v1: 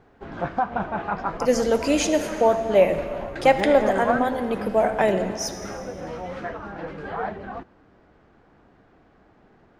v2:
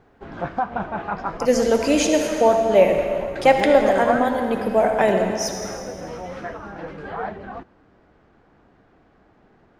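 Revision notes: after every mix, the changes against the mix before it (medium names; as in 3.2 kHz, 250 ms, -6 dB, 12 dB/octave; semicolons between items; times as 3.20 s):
speech: send +7.5 dB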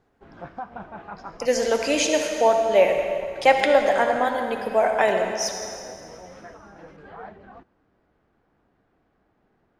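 speech: add frequency weighting A; background -11.0 dB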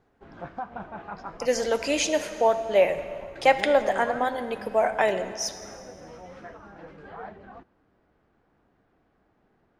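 speech: send -10.0 dB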